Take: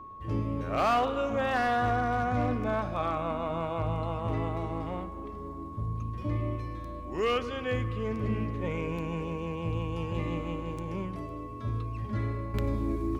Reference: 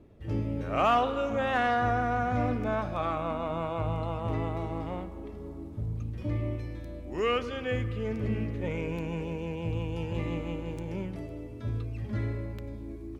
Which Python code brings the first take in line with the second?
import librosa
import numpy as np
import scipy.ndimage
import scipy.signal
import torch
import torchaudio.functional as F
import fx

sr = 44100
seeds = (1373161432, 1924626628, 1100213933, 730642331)

y = fx.fix_declip(x, sr, threshold_db=-20.0)
y = fx.notch(y, sr, hz=1100.0, q=30.0)
y = fx.gain(y, sr, db=fx.steps((0.0, 0.0), (12.54, -10.0)))